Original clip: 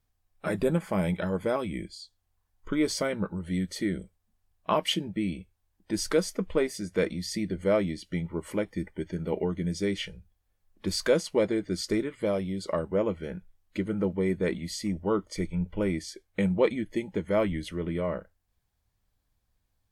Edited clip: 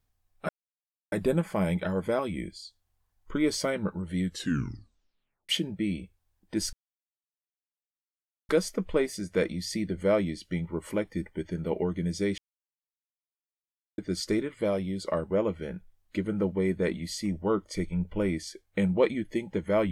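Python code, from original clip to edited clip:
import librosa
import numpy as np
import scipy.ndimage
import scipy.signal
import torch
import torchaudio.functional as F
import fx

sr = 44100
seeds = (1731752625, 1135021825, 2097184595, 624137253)

y = fx.edit(x, sr, fx.insert_silence(at_s=0.49, length_s=0.63),
    fx.tape_stop(start_s=3.62, length_s=1.24),
    fx.insert_silence(at_s=6.1, length_s=1.76),
    fx.silence(start_s=9.99, length_s=1.6), tone=tone)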